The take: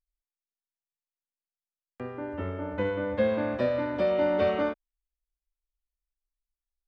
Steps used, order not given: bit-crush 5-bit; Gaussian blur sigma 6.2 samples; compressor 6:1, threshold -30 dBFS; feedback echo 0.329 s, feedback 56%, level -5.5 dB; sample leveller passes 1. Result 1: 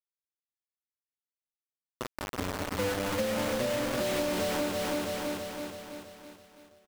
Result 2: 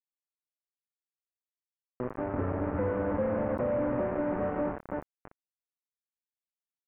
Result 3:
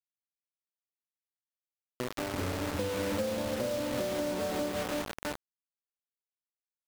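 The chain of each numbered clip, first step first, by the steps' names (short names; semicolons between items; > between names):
Gaussian blur > bit-crush > feedback echo > compressor > sample leveller; compressor > feedback echo > sample leveller > bit-crush > Gaussian blur; Gaussian blur > sample leveller > feedback echo > bit-crush > compressor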